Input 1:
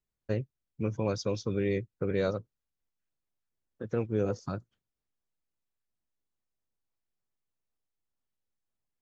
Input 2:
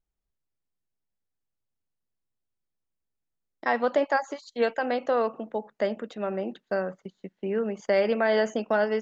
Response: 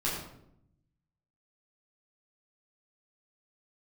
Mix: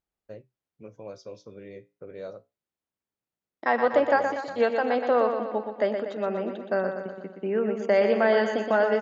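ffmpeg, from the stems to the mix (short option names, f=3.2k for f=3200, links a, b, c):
-filter_complex "[0:a]equalizer=f=610:t=o:w=0.78:g=9,flanger=delay=10:depth=8.8:regen=-62:speed=0.29:shape=sinusoidal,volume=-9.5dB[a];[1:a]highshelf=f=3.8k:g=-9,volume=2.5dB,asplit=2[b][c];[c]volume=-7dB,aecho=0:1:121|242|363|484|605|726|847|968:1|0.56|0.314|0.176|0.0983|0.0551|0.0308|0.0173[d];[a][b][d]amix=inputs=3:normalize=0,highpass=f=190:p=1"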